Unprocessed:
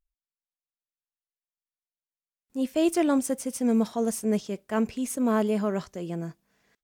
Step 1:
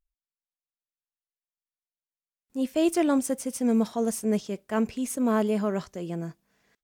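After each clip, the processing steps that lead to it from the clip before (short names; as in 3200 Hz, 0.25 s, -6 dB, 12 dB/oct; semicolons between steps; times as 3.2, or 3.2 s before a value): nothing audible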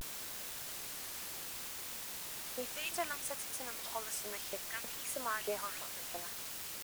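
LFO high-pass saw up 3.1 Hz 580–3200 Hz; requantised 6-bit, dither triangular; vibrato 0.66 Hz 89 cents; gain -8 dB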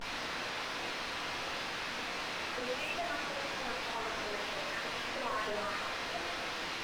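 delta modulation 32 kbps, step -51 dBFS; overdrive pedal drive 30 dB, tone 3200 Hz, clips at -28 dBFS; shoebox room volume 240 m³, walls mixed, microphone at 1.7 m; gain -6.5 dB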